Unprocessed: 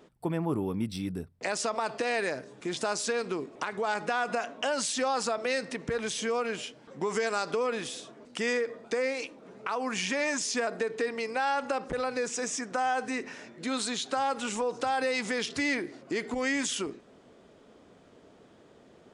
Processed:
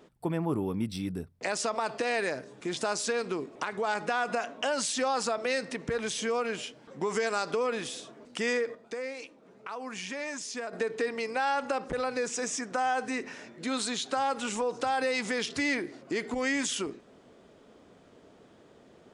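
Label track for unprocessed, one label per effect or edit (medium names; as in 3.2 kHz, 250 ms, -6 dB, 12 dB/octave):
8.750000	10.730000	gain -7 dB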